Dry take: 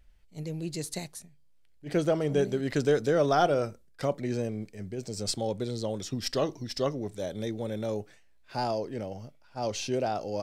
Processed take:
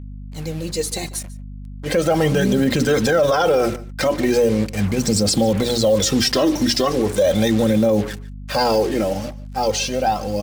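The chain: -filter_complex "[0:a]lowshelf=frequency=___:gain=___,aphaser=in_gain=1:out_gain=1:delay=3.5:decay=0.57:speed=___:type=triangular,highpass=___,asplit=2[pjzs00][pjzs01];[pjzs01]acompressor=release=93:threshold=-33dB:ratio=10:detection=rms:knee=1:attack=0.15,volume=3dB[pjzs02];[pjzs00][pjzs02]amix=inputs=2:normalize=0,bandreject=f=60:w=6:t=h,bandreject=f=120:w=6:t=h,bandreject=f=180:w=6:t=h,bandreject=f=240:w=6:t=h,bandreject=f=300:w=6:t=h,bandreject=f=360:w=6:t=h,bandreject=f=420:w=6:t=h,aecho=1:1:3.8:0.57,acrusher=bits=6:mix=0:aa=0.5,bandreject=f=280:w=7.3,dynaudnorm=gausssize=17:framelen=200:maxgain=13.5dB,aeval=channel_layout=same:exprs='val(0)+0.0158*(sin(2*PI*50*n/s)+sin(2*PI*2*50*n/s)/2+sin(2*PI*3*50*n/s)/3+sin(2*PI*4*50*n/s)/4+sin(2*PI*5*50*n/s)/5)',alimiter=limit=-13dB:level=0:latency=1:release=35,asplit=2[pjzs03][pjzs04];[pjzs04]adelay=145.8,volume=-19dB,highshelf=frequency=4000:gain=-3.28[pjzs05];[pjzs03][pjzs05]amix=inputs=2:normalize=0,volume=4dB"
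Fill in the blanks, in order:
160, 4, 0.38, 99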